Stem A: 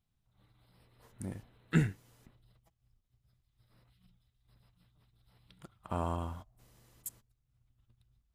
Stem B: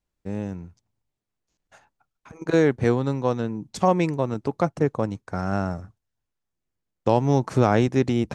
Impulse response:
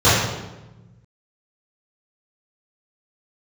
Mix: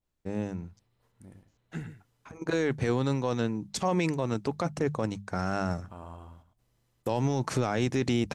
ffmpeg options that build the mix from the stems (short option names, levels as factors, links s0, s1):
-filter_complex "[0:a]equalizer=f=12000:w=0.64:g=-3.5,volume=0.299,asplit=2[s0][s1];[s1]volume=0.335[s2];[1:a]bandreject=f=50:t=h:w=6,bandreject=f=100:t=h:w=6,bandreject=f=150:t=h:w=6,bandreject=f=200:t=h:w=6,adynamicequalizer=threshold=0.0141:dfrequency=1600:dqfactor=0.7:tfrequency=1600:tqfactor=0.7:attack=5:release=100:ratio=0.375:range=3.5:mode=boostabove:tftype=highshelf,volume=0.841[s3];[s2]aecho=0:1:108:1[s4];[s0][s3][s4]amix=inputs=3:normalize=0,alimiter=limit=0.141:level=0:latency=1:release=13"